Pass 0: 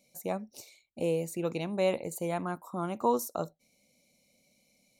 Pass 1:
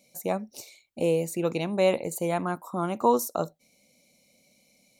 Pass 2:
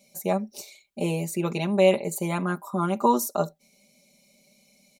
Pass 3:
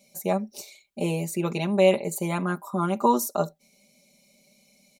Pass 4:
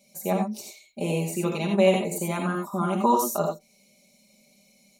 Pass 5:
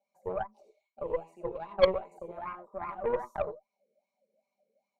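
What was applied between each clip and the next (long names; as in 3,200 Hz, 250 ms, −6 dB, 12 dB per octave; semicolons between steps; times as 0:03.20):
low-shelf EQ 82 Hz −6 dB; level +5.5 dB
comb filter 5 ms, depth 88%
no processing that can be heard
reverb whose tail is shaped and stops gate 110 ms rising, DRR 1.5 dB; level −1.5 dB
LFO wah 2.5 Hz 440–1,100 Hz, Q 11; harmonic generator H 3 −20 dB, 4 −15 dB, 6 −12 dB, 8 −15 dB, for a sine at −15.5 dBFS; level +5 dB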